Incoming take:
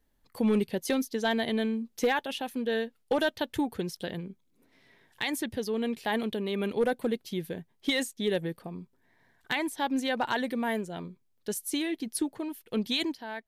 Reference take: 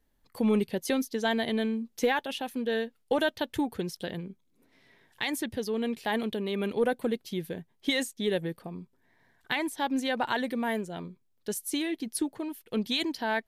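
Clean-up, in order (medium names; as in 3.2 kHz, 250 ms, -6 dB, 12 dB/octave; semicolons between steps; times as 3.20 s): clip repair -18.5 dBFS; gain correction +9.5 dB, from 13.14 s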